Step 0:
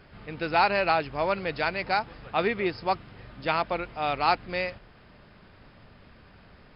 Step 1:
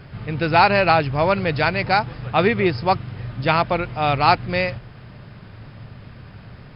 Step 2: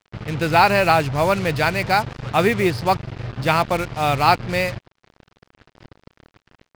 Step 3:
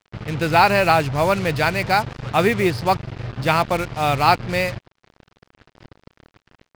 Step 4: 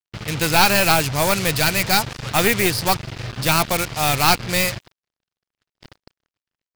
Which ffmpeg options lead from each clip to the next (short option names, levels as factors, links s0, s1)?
-af "equalizer=f=120:w=1.6:g=13.5,volume=2.37"
-af "acrusher=bits=4:mix=0:aa=0.5"
-af anull
-af "crystalizer=i=5.5:c=0,aeval=exprs='clip(val(0),-1,0.119)':c=same,agate=range=0.0178:threshold=0.00708:ratio=16:detection=peak,volume=0.891"